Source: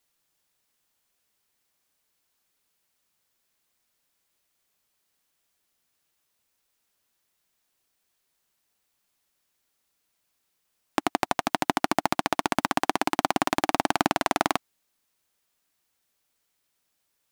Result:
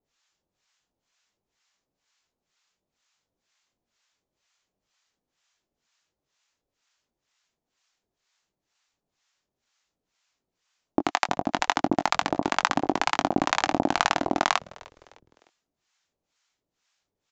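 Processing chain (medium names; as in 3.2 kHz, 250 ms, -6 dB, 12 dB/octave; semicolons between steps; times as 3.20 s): harmonic tremolo 2.1 Hz, depth 100%, crossover 730 Hz; doubling 21 ms -9.5 dB; on a send: frequency-shifting echo 304 ms, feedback 42%, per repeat -130 Hz, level -23 dB; on the sum: resampled via 16 kHz; trim +5.5 dB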